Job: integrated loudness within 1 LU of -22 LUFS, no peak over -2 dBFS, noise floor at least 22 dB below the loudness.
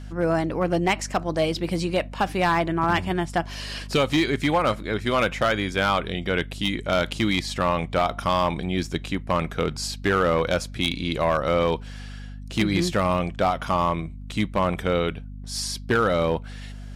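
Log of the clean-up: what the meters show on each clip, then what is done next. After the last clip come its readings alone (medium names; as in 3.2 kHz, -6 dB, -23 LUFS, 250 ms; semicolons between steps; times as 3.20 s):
clipped samples 1.0%; clipping level -14.0 dBFS; hum 50 Hz; highest harmonic 250 Hz; hum level -34 dBFS; loudness -24.0 LUFS; peak level -14.0 dBFS; loudness target -22.0 LUFS
-> clip repair -14 dBFS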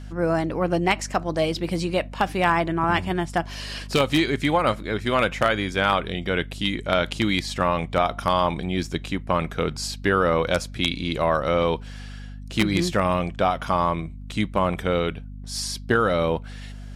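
clipped samples 0.0%; hum 50 Hz; highest harmonic 250 Hz; hum level -34 dBFS
-> de-hum 50 Hz, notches 5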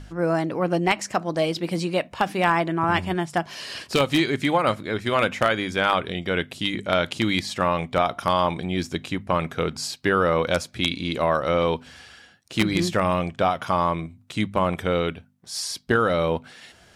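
hum not found; loudness -24.0 LUFS; peak level -4.5 dBFS; loudness target -22.0 LUFS
-> trim +2 dB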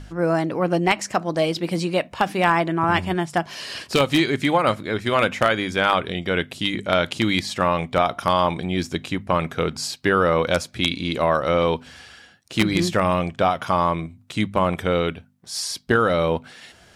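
loudness -22.0 LUFS; peak level -2.5 dBFS; noise floor -51 dBFS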